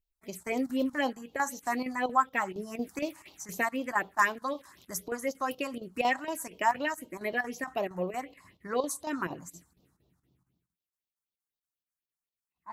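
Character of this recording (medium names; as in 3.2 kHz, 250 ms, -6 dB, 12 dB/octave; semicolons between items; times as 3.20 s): chopped level 4.3 Hz, depth 65%, duty 85%; phasing stages 4, 4 Hz, lowest notch 420–1800 Hz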